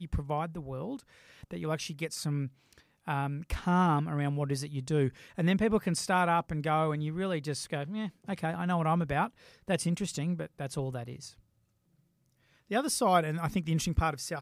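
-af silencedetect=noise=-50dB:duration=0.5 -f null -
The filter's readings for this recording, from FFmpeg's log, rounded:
silence_start: 11.39
silence_end: 12.70 | silence_duration: 1.31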